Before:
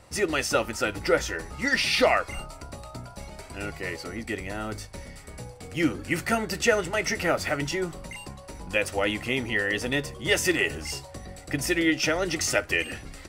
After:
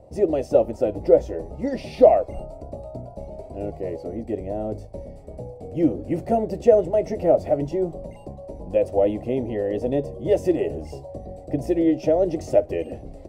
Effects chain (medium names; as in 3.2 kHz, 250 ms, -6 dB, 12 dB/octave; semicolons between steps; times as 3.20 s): FFT filter 180 Hz 0 dB, 380 Hz +3 dB, 640 Hz +8 dB, 1.4 kHz -26 dB, 2.3 kHz -21 dB; trim +3 dB